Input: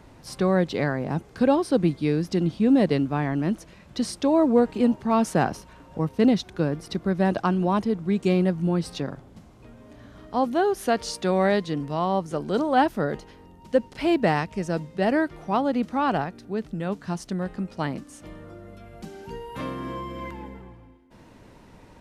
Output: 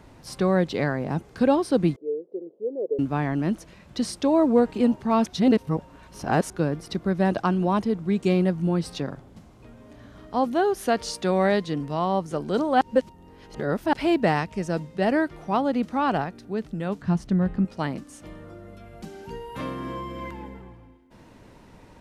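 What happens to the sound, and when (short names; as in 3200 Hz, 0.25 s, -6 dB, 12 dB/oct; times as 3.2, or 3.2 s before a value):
1.96–2.99 Butterworth band-pass 450 Hz, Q 3.3
5.26–6.5 reverse
12.81–13.93 reverse
17.02–17.65 tone controls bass +10 dB, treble -9 dB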